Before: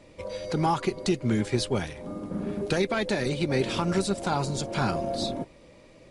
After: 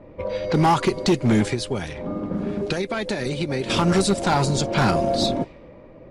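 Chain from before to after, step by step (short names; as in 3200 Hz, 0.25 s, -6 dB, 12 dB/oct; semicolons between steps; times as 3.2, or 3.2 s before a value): low-pass opened by the level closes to 1100 Hz, open at -23.5 dBFS; 1.51–3.7 compressor 5:1, threshold -31 dBFS, peak gain reduction 10.5 dB; overloaded stage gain 21 dB; gain +8.5 dB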